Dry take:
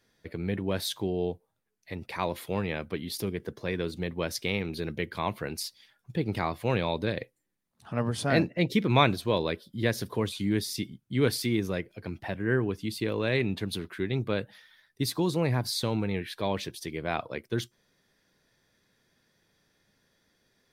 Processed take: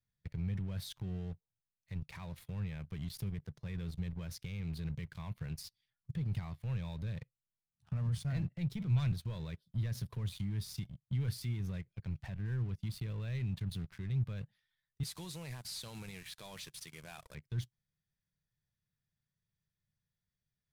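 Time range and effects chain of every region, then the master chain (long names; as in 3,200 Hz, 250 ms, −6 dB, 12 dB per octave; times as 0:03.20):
0:08.18–0:09.12: high-pass filter 43 Hz 24 dB per octave + low-shelf EQ 210 Hz +4 dB + multiband upward and downward expander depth 70%
0:15.03–0:17.35: variable-slope delta modulation 64 kbit/s + high-pass filter 320 Hz + high-shelf EQ 2,900 Hz +10.5 dB
whole clip: leveller curve on the samples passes 3; brickwall limiter −17 dBFS; drawn EQ curve 150 Hz 0 dB, 290 Hz −23 dB, 2,200 Hz −15 dB; level −5 dB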